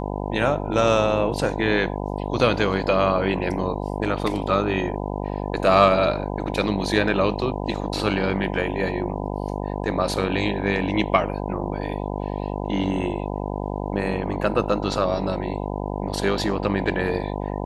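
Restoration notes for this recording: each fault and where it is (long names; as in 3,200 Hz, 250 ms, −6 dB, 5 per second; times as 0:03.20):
mains buzz 50 Hz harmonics 20 −28 dBFS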